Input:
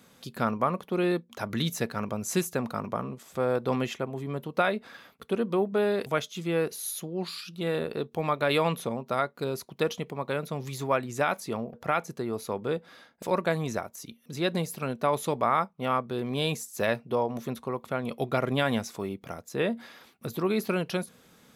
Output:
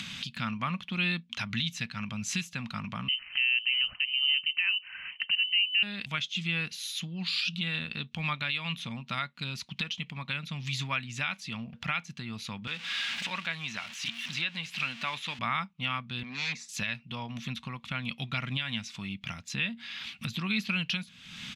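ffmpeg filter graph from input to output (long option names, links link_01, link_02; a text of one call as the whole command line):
ffmpeg -i in.wav -filter_complex "[0:a]asettb=1/sr,asplit=3[link_01][link_02][link_03];[link_01]atrim=end=3.084[link_04];[link_02]atrim=start=3.08:end=5.83,asetpts=PTS-STARTPTS,afade=type=in:duration=0.004:curve=qsin,afade=type=out:start_time=2.746:duration=0.004:curve=qsin,lowpass=frequency=2700:width_type=q:width=0.5098,lowpass=frequency=2700:width_type=q:width=0.6013,lowpass=frequency=2700:width_type=q:width=0.9,lowpass=frequency=2700:width_type=q:width=2.563,afreqshift=-3200,aemphasis=mode=reproduction:type=75fm[link_05];[link_03]atrim=start=5.826[link_06];[link_04][link_05]acrossfade=duration=0.004:curve1=hsin:curve2=qsin[link_07];[link_07][link_06]acrossfade=duration=0.004:curve1=qsin:curve2=hsin,asettb=1/sr,asplit=3[link_08][link_09][link_10];[link_08]atrim=end=12.674[link_11];[link_09]atrim=start=12.67:end=15.39,asetpts=PTS-STARTPTS,afade=type=in:duration=0.004:curve=qsin,afade=type=out:start_time=2.716:duration=0.004:curve=qsin,aeval=exprs='val(0)+0.5*0.0133*sgn(val(0))':channel_layout=same,acrossover=split=3100[link_12][link_13];[link_13]acompressor=threshold=-45dB:ratio=4:attack=1:release=60[link_14];[link_12][link_14]amix=inputs=2:normalize=0,highpass=frequency=620:poles=1[link_15];[link_10]atrim=start=15.386[link_16];[link_11][link_15]acrossfade=duration=0.004:curve1=hsin:curve2=qsin[link_17];[link_17][link_16]acrossfade=duration=0.004:curve1=qsin:curve2=hsin,asettb=1/sr,asplit=3[link_18][link_19][link_20];[link_18]atrim=end=16.234[link_21];[link_19]atrim=start=16.23:end=16.69,asetpts=PTS-STARTPTS,afade=type=in:duration=0.004:curve=qsin,afade=type=out:start_time=0.456:duration=0.004:curve=qsin,aeval=exprs='0.0531*(abs(mod(val(0)/0.0531+3,4)-2)-1)':channel_layout=same,highpass=300,lowpass=4000,equalizer=frequency=3000:width_type=o:width=0.33:gain=-14.5[link_22];[link_20]atrim=start=16.686[link_23];[link_21][link_22]acrossfade=duration=0.004:curve1=hsin:curve2=qsin[link_24];[link_24][link_23]acrossfade=duration=0.004:curve1=qsin:curve2=hsin,acompressor=mode=upward:threshold=-28dB:ratio=2.5,firequalizer=gain_entry='entry(200,0);entry(390,-24);entry(900,-9);entry(2700,13);entry(4600,4);entry(13000,-19)':delay=0.05:min_phase=1,alimiter=limit=-18dB:level=0:latency=1:release=409" out.wav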